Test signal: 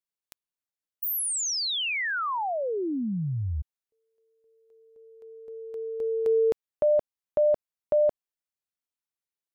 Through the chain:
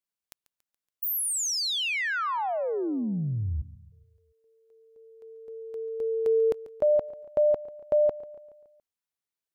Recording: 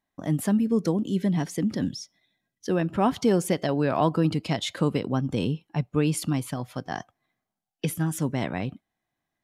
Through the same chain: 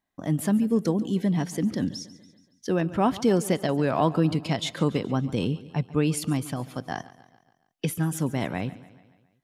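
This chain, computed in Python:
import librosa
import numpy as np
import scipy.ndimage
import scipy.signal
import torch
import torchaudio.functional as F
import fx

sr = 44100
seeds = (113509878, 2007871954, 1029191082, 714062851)

y = fx.echo_feedback(x, sr, ms=141, feedback_pct=54, wet_db=-18)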